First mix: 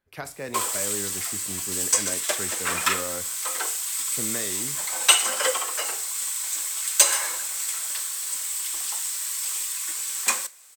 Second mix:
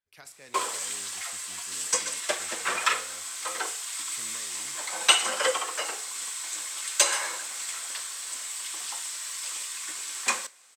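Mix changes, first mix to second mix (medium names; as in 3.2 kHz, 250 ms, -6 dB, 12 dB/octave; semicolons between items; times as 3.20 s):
speech: add pre-emphasis filter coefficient 0.9; master: add distance through air 59 m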